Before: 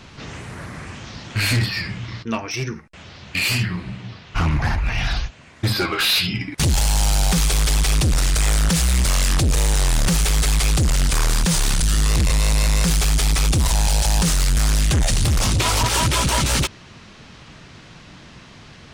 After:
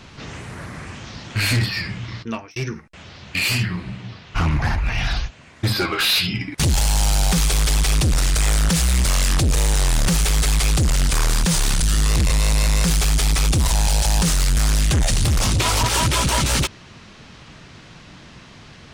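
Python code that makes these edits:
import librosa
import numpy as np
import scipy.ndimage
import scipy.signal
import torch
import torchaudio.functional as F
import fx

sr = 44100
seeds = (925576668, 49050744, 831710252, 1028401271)

y = fx.edit(x, sr, fx.fade_out_span(start_s=2.23, length_s=0.33), tone=tone)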